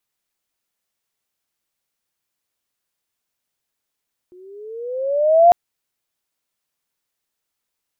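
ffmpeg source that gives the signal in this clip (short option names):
-f lavfi -i "aevalsrc='pow(10,(-5+36.5*(t/1.2-1))/20)*sin(2*PI*355*1.2/(12*log(2)/12)*(exp(12*log(2)/12*t/1.2)-1))':d=1.2:s=44100"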